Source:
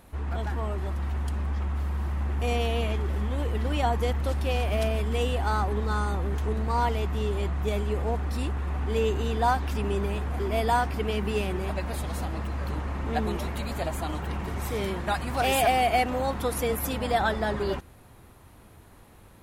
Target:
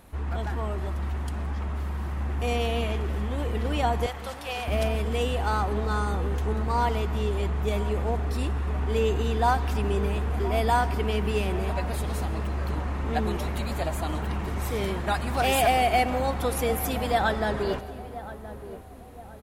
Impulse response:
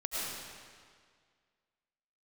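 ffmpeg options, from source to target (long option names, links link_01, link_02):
-filter_complex "[0:a]asettb=1/sr,asplit=3[link_01][link_02][link_03];[link_01]atrim=end=4.064[link_04];[link_02]atrim=start=4.06:end=4.68,asetpts=PTS-STARTPTS,afade=type=in:duration=0.004:curve=qsin,afade=type=out:start_time=0.616:duration=0.004:curve=qsin,highpass=frequency=640:width=0.5412,highpass=frequency=640:width=1.3066[link_05];[link_03]atrim=start=4.676[link_06];[link_04][link_05]acrossfade=duration=0.004:curve1=hsin:curve2=qsin[link_07];[link_07][link_06]acrossfade=duration=0.004:curve1=qsin:curve2=hsin,asplit=2[link_08][link_09];[link_09]adelay=1023,lowpass=frequency=1000:poles=1,volume=-13dB,asplit=2[link_10][link_11];[link_11]adelay=1023,lowpass=frequency=1000:poles=1,volume=0.51,asplit=2[link_12][link_13];[link_13]adelay=1023,lowpass=frequency=1000:poles=1,volume=0.51,asplit=2[link_14][link_15];[link_15]adelay=1023,lowpass=frequency=1000:poles=1,volume=0.51,asplit=2[link_16][link_17];[link_17]adelay=1023,lowpass=frequency=1000:poles=1,volume=0.51[link_18];[link_08][link_10][link_12][link_14][link_16][link_18]amix=inputs=6:normalize=0,asplit=2[link_19][link_20];[1:a]atrim=start_sample=2205[link_21];[link_20][link_21]afir=irnorm=-1:irlink=0,volume=-18.5dB[link_22];[link_19][link_22]amix=inputs=2:normalize=0"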